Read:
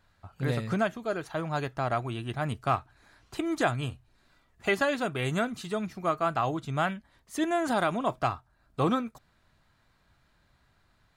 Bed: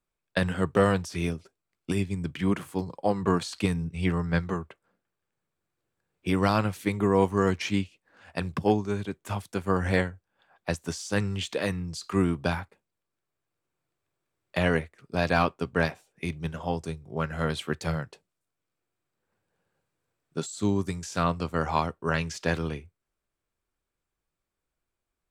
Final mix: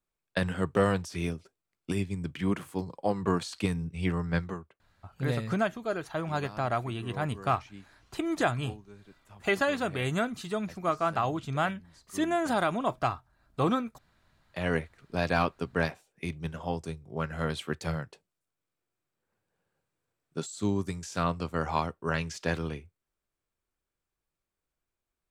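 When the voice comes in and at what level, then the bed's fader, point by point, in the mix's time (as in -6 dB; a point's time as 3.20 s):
4.80 s, -0.5 dB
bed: 4.43 s -3 dB
4.92 s -21.5 dB
14.29 s -21.5 dB
14.73 s -3 dB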